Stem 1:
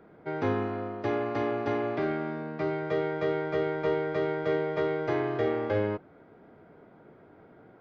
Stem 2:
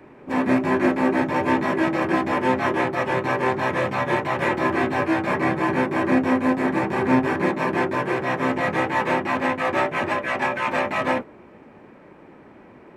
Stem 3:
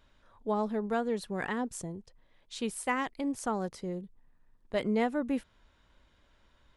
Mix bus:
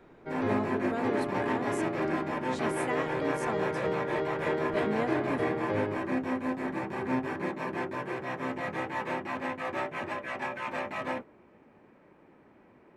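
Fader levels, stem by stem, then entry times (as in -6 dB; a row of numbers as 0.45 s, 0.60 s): -4.0 dB, -11.5 dB, -4.5 dB; 0.00 s, 0.00 s, 0.00 s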